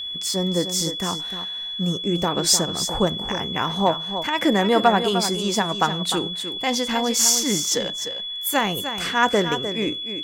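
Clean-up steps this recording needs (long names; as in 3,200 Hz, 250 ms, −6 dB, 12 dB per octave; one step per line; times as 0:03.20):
notch filter 3,400 Hz, Q 30
echo removal 303 ms −9.5 dB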